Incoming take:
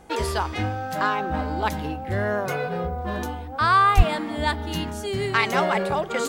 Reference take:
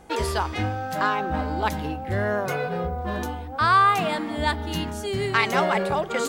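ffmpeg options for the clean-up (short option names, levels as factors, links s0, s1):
-filter_complex "[0:a]asplit=3[s0][s1][s2];[s0]afade=t=out:st=3.96:d=0.02[s3];[s1]highpass=f=140:w=0.5412,highpass=f=140:w=1.3066,afade=t=in:st=3.96:d=0.02,afade=t=out:st=4.08:d=0.02[s4];[s2]afade=t=in:st=4.08:d=0.02[s5];[s3][s4][s5]amix=inputs=3:normalize=0"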